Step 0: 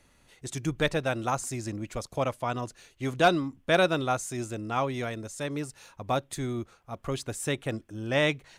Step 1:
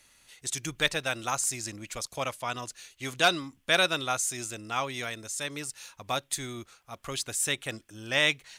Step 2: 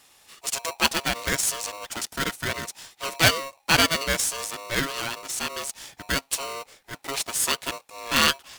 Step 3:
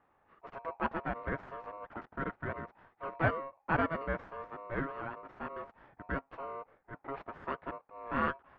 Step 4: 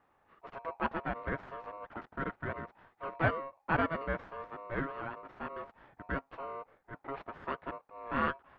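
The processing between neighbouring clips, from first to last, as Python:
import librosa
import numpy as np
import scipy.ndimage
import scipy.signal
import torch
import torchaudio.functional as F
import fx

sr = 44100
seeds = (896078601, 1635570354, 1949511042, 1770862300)

y1 = fx.tilt_shelf(x, sr, db=-8.5, hz=1300.0)
y2 = y1 * np.sign(np.sin(2.0 * np.pi * 820.0 * np.arange(len(y1)) / sr))
y2 = y2 * 10.0 ** (4.5 / 20.0)
y3 = scipy.signal.sosfilt(scipy.signal.butter(4, 1500.0, 'lowpass', fs=sr, output='sos'), y2)
y3 = y3 * 10.0 ** (-6.5 / 20.0)
y4 = fx.peak_eq(y3, sr, hz=3700.0, db=4.0, octaves=1.1)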